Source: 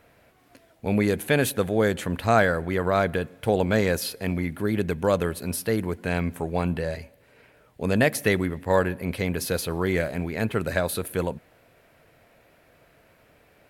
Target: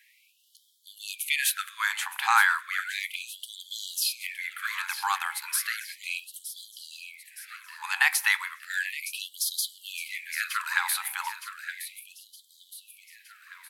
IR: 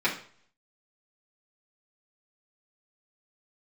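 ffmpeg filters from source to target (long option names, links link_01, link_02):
-filter_complex "[0:a]aecho=1:1:916|1832|2748|3664|4580|5496:0.282|0.147|0.0762|0.0396|0.0206|0.0107,asplit=2[link_01][link_02];[1:a]atrim=start_sample=2205,adelay=20[link_03];[link_02][link_03]afir=irnorm=-1:irlink=0,volume=-27.5dB[link_04];[link_01][link_04]amix=inputs=2:normalize=0,afftfilt=real='re*gte(b*sr/1024,750*pow(3100/750,0.5+0.5*sin(2*PI*0.34*pts/sr)))':imag='im*gte(b*sr/1024,750*pow(3100/750,0.5+0.5*sin(2*PI*0.34*pts/sr)))':win_size=1024:overlap=0.75,volume=4dB"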